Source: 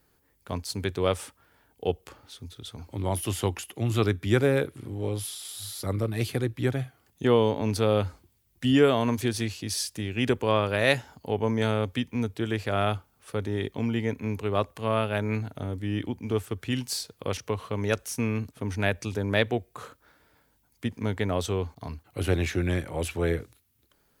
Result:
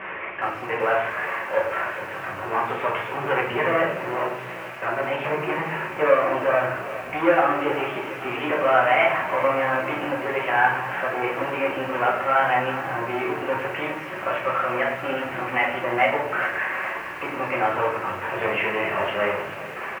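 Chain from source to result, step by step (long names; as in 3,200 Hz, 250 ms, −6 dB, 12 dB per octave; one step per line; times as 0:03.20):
converter with a step at zero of −28 dBFS
leveller curve on the samples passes 3
elliptic low-pass filter 2,200 Hz, stop band 40 dB
echo with shifted repeats 373 ms, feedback 53%, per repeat +48 Hz, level −18.5 dB
flanger 1.4 Hz, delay 0 ms, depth 6.5 ms, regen +58%
speed change +21%
high-pass filter 1,200 Hz 12 dB per octave
spectral tilt −4 dB per octave
rectangular room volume 81 cubic metres, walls mixed, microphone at 1.1 metres
feedback echo at a low word length 414 ms, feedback 55%, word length 7 bits, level −14.5 dB
level +3 dB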